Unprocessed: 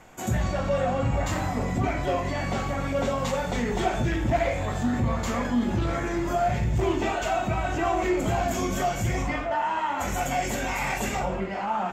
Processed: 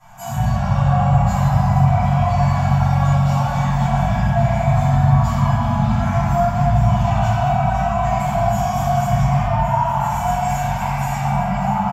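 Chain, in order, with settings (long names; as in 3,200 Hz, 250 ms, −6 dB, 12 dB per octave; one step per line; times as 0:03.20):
elliptic band-stop filter 210–710 Hz, stop band 40 dB
low-shelf EQ 330 Hz −8 dB
tuned comb filter 330 Hz, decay 0.16 s, harmonics odd, mix 80%
sine wavefolder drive 8 dB, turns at −17.5 dBFS
brickwall limiter −28 dBFS, peak gain reduction 9.5 dB
graphic EQ with 10 bands 125 Hz +10 dB, 500 Hz +8 dB, 2,000 Hz −10 dB, 4,000 Hz −5 dB, 8,000 Hz −6 dB
single-tap delay 1,120 ms −12.5 dB
convolution reverb RT60 3.0 s, pre-delay 3 ms, DRR −17.5 dB
level −3 dB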